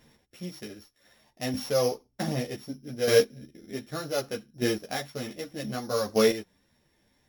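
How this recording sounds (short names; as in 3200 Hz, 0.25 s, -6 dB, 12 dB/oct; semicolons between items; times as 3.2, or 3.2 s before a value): a buzz of ramps at a fixed pitch in blocks of 8 samples; chopped level 0.65 Hz, depth 60%, duty 10%; a shimmering, thickened sound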